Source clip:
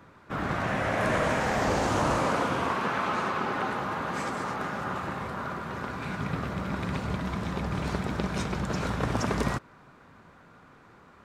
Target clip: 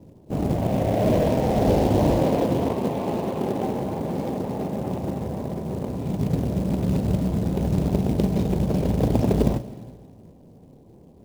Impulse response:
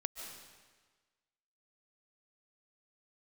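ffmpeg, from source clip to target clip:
-filter_complex "[0:a]asuperstop=centerf=1500:order=4:qfactor=0.55,adynamicsmooth=sensitivity=4.5:basefreq=750,asplit=2[link_01][link_02];[1:a]atrim=start_sample=2205,adelay=38[link_03];[link_02][link_03]afir=irnorm=-1:irlink=0,volume=-10.5dB[link_04];[link_01][link_04]amix=inputs=2:normalize=0,acrusher=bits=6:mode=log:mix=0:aa=0.000001,volume=9dB"

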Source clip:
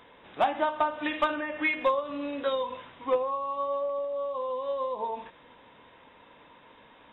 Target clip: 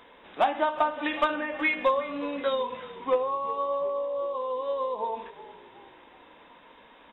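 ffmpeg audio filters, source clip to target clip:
ffmpeg -i in.wav -filter_complex "[0:a]equalizer=frequency=120:width=2.6:gain=-14.5,asplit=5[link_01][link_02][link_03][link_04][link_05];[link_02]adelay=367,afreqshift=-52,volume=-17dB[link_06];[link_03]adelay=734,afreqshift=-104,volume=-23.6dB[link_07];[link_04]adelay=1101,afreqshift=-156,volume=-30.1dB[link_08];[link_05]adelay=1468,afreqshift=-208,volume=-36.7dB[link_09];[link_01][link_06][link_07][link_08][link_09]amix=inputs=5:normalize=0,volume=1.5dB" out.wav

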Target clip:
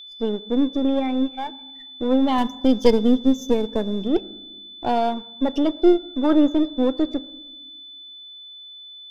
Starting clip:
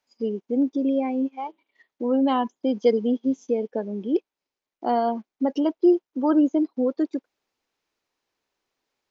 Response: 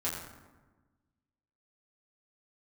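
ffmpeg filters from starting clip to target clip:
-filter_complex "[0:a]aeval=exprs='if(lt(val(0),0),0.447*val(0),val(0))':channel_layout=same,asettb=1/sr,asplit=3[link_01][link_02][link_03];[link_01]atrim=end=2.384[link_04];[link_02]atrim=start=2.38:end=4.08,asetpts=PTS-STARTPTS,afade=type=in:duration=0.004:curve=qsin,afade=type=out:start_time=1.696:duration=0.004:curve=qsin,bass=frequency=250:gain=6,treble=frequency=4000:gain=11[link_05];[link_03]atrim=start=4.076[link_06];[link_04][link_05]acrossfade=duration=0.004:curve1=hsin:curve2=qsin[link_07];[link_07][link_06]acrossfade=duration=0.004:curve1=qsin:curve2=hsin,aeval=exprs='val(0)+0.00708*sin(2*PI*3500*n/s)':channel_layout=same,asplit=2[link_08][link_09];[1:a]atrim=start_sample=2205[link_10];[link_09][link_10]afir=irnorm=-1:irlink=0,volume=-20dB[link_11];[link_08][link_11]amix=inputs=2:normalize=0,volume=4dB"

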